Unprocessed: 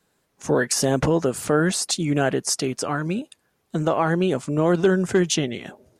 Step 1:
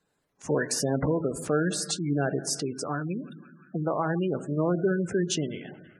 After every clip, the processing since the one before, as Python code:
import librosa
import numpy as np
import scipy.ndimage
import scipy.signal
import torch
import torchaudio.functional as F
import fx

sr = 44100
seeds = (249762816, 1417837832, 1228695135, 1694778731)

y = fx.echo_banded(x, sr, ms=172, feedback_pct=81, hz=1700.0, wet_db=-18.5)
y = fx.room_shoebox(y, sr, seeds[0], volume_m3=680.0, walls='mixed', distance_m=0.41)
y = fx.spec_gate(y, sr, threshold_db=-20, keep='strong')
y = F.gain(torch.from_numpy(y), -6.5).numpy()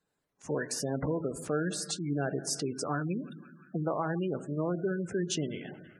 y = fx.rider(x, sr, range_db=4, speed_s=0.5)
y = F.gain(torch.from_numpy(y), -4.5).numpy()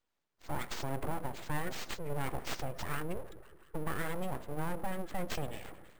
y = np.repeat(x[::4], 4)[:len(x)]
y = np.abs(y)
y = F.gain(torch.from_numpy(y), -2.0).numpy()